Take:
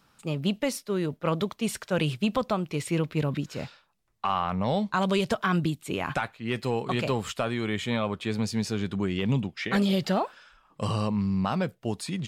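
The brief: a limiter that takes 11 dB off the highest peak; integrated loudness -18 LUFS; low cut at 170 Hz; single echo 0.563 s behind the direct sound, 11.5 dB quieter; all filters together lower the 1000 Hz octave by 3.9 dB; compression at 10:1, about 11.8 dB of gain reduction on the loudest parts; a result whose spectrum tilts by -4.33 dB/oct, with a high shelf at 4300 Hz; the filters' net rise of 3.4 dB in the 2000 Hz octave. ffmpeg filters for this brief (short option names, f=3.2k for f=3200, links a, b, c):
-af "highpass=170,equalizer=f=1k:t=o:g=-7,equalizer=f=2k:t=o:g=6,highshelf=f=4.3k:g=3,acompressor=threshold=-34dB:ratio=10,alimiter=level_in=6.5dB:limit=-24dB:level=0:latency=1,volume=-6.5dB,aecho=1:1:563:0.266,volume=23dB"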